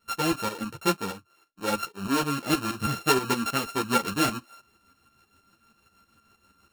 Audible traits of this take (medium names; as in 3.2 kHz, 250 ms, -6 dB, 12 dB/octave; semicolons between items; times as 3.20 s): a buzz of ramps at a fixed pitch in blocks of 32 samples; tremolo saw up 6.3 Hz, depth 70%; a shimmering, thickened sound